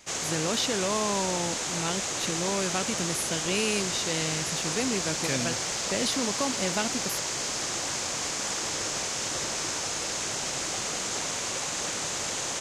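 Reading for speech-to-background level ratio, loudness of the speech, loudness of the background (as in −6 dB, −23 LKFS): −2.0 dB, −31.0 LKFS, −29.0 LKFS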